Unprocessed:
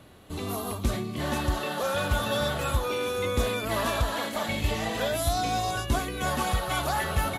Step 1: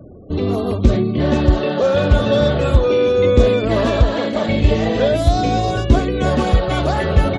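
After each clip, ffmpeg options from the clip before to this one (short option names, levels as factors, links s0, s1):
-af "lowpass=5600,afftfilt=real='re*gte(hypot(re,im),0.00447)':imag='im*gte(hypot(re,im),0.00447)':win_size=1024:overlap=0.75,lowshelf=f=680:t=q:w=1.5:g=8,volume=2"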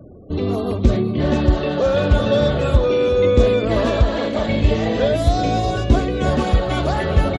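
-af "aecho=1:1:379|758|1137:0.178|0.064|0.023,volume=0.794"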